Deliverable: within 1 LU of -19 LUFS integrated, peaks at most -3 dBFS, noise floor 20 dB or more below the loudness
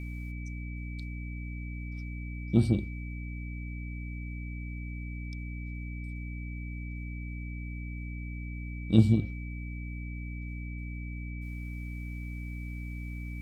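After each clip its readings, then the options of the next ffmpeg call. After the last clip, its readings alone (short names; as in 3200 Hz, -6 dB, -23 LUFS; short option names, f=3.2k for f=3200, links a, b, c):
hum 60 Hz; harmonics up to 300 Hz; hum level -35 dBFS; steady tone 2300 Hz; tone level -47 dBFS; loudness -35.0 LUFS; peak -8.5 dBFS; loudness target -19.0 LUFS
-> -af "bandreject=f=60:t=h:w=6,bandreject=f=120:t=h:w=6,bandreject=f=180:t=h:w=6,bandreject=f=240:t=h:w=6,bandreject=f=300:t=h:w=6"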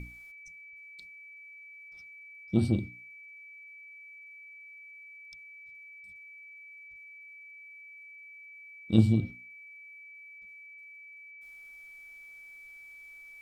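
hum none; steady tone 2300 Hz; tone level -47 dBFS
-> -af "bandreject=f=2.3k:w=30"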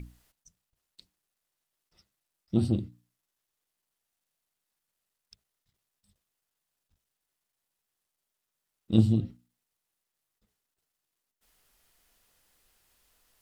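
steady tone none; loudness -27.5 LUFS; peak -8.5 dBFS; loudness target -19.0 LUFS
-> -af "volume=8.5dB,alimiter=limit=-3dB:level=0:latency=1"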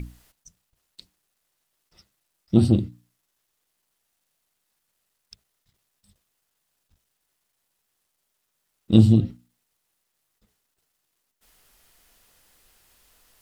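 loudness -19.5 LUFS; peak -3.0 dBFS; noise floor -77 dBFS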